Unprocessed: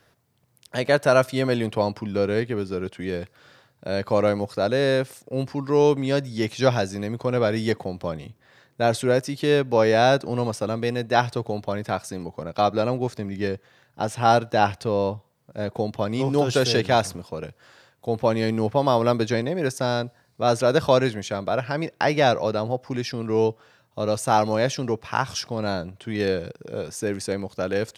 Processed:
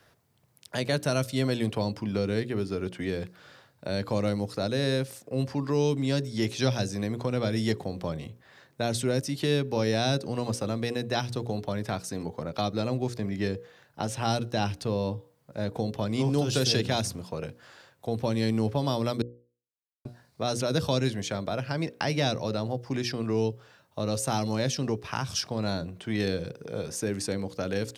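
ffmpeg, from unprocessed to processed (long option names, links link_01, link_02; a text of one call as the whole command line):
ffmpeg -i in.wav -filter_complex "[0:a]asplit=3[link_01][link_02][link_03];[link_01]atrim=end=19.22,asetpts=PTS-STARTPTS,afade=type=out:start_time=19.216:duration=0.004:curve=hsin[link_04];[link_02]atrim=start=19.22:end=20.05,asetpts=PTS-STARTPTS,volume=0[link_05];[link_03]atrim=start=20.05,asetpts=PTS-STARTPTS,afade=type=in:duration=0.004:curve=hsin[link_06];[link_04][link_05][link_06]concat=n=3:v=0:a=1,bandreject=frequency=60:width_type=h:width=6,bandreject=frequency=120:width_type=h:width=6,bandreject=frequency=180:width_type=h:width=6,bandreject=frequency=240:width_type=h:width=6,bandreject=frequency=300:width_type=h:width=6,bandreject=frequency=360:width_type=h:width=6,bandreject=frequency=420:width_type=h:width=6,bandreject=frequency=480:width_type=h:width=6,bandreject=frequency=540:width_type=h:width=6,acrossover=split=290|3000[link_07][link_08][link_09];[link_08]acompressor=threshold=-33dB:ratio=3[link_10];[link_07][link_10][link_09]amix=inputs=3:normalize=0" out.wav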